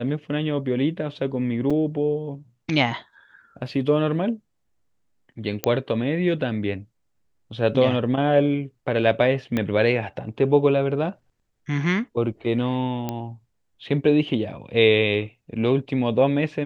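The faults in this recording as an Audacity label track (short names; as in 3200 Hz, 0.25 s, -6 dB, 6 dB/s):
1.700000	1.710000	gap 5.2 ms
5.640000	5.640000	pop -6 dBFS
9.570000	9.570000	pop -12 dBFS
13.090000	13.090000	pop -13 dBFS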